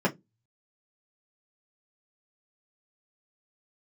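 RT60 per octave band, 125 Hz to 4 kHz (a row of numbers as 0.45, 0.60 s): 0.30, 0.30, 0.20, 0.15, 0.10, 0.10 s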